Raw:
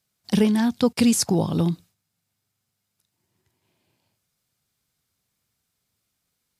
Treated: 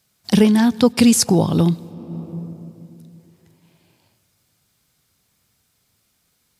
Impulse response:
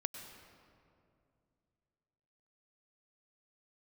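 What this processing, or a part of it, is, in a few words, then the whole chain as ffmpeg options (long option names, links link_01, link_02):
ducked reverb: -filter_complex "[0:a]asplit=3[link_01][link_02][link_03];[1:a]atrim=start_sample=2205[link_04];[link_02][link_04]afir=irnorm=-1:irlink=0[link_05];[link_03]apad=whole_len=290735[link_06];[link_05][link_06]sidechaincompress=threshold=-35dB:ratio=10:attack=6.2:release=485,volume=0dB[link_07];[link_01][link_07]amix=inputs=2:normalize=0,volume=5dB"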